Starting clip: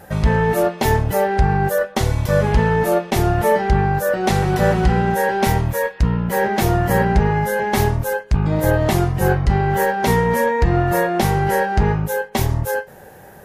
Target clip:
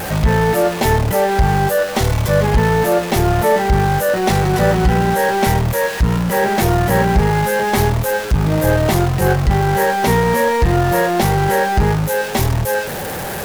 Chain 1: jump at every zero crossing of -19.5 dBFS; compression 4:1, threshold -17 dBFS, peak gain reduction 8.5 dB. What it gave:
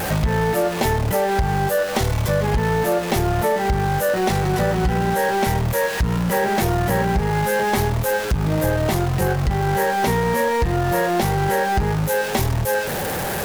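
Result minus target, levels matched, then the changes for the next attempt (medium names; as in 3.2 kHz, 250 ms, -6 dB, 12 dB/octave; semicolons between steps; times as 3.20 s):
compression: peak gain reduction +8.5 dB
remove: compression 4:1, threshold -17 dBFS, peak gain reduction 8.5 dB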